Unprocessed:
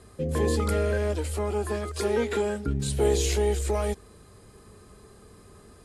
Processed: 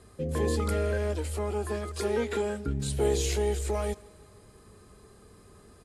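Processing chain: feedback echo 0.166 s, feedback 58%, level -23.5 dB; gain -3 dB

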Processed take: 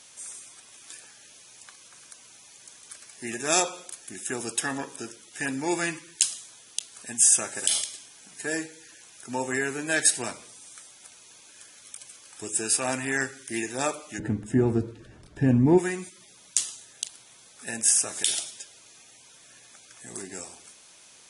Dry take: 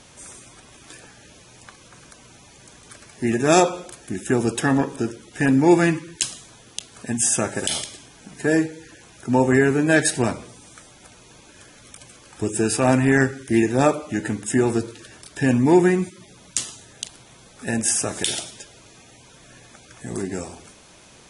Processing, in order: tilt +3.5 dB/oct, from 14.18 s -3 dB/oct, from 15.77 s +3 dB/oct; gain -8.5 dB

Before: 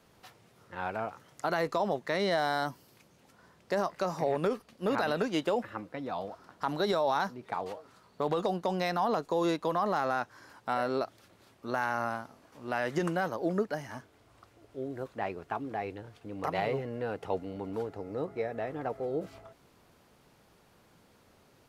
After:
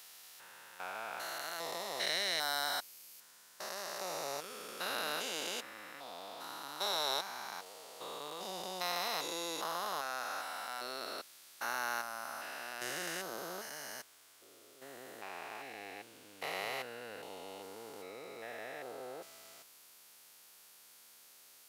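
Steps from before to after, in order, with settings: stepped spectrum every 0.4 s; differentiator; gain +14 dB

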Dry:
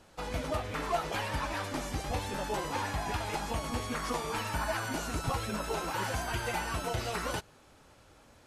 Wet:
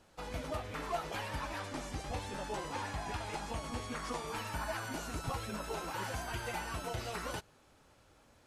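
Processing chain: 1.6–4.27 LPF 11000 Hz 24 dB/oct; gain -5.5 dB

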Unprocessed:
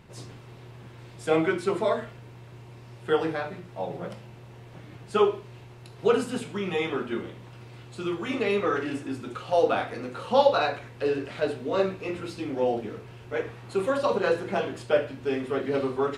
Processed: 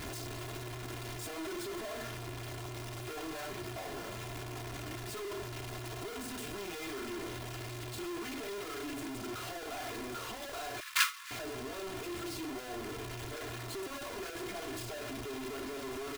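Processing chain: infinite clipping; 10.8–11.31 elliptic high-pass 1100 Hz, stop band 40 dB; gate with hold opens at -20 dBFS; comb 2.9 ms, depth 67%; gain +7 dB

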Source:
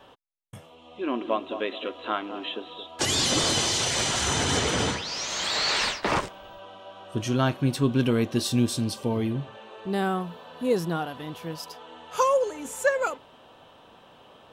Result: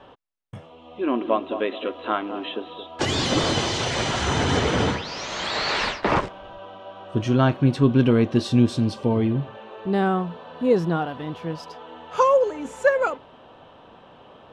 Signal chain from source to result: tape spacing loss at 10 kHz 20 dB; gain +6 dB

